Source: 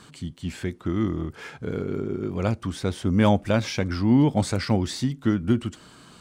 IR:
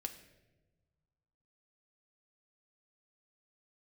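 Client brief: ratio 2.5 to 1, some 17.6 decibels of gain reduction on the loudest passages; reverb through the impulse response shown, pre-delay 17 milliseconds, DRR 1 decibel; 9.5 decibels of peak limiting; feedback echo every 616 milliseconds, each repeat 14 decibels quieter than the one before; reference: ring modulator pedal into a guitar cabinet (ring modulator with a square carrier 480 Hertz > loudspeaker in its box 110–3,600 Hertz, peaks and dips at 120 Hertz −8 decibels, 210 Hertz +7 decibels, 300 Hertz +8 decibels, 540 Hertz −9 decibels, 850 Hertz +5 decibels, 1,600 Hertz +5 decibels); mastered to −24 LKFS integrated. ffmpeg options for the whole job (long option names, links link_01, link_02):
-filter_complex "[0:a]acompressor=threshold=-42dB:ratio=2.5,alimiter=level_in=8dB:limit=-24dB:level=0:latency=1,volume=-8dB,aecho=1:1:616|1232:0.2|0.0399,asplit=2[link_01][link_02];[1:a]atrim=start_sample=2205,adelay=17[link_03];[link_02][link_03]afir=irnorm=-1:irlink=0,volume=1dB[link_04];[link_01][link_04]amix=inputs=2:normalize=0,aeval=exprs='val(0)*sgn(sin(2*PI*480*n/s))':channel_layout=same,highpass=110,equalizer=frequency=120:width_type=q:width=4:gain=-8,equalizer=frequency=210:width_type=q:width=4:gain=7,equalizer=frequency=300:width_type=q:width=4:gain=8,equalizer=frequency=540:width_type=q:width=4:gain=-9,equalizer=frequency=850:width_type=q:width=4:gain=5,equalizer=frequency=1600:width_type=q:width=4:gain=5,lowpass=frequency=3600:width=0.5412,lowpass=frequency=3600:width=1.3066,volume=14dB"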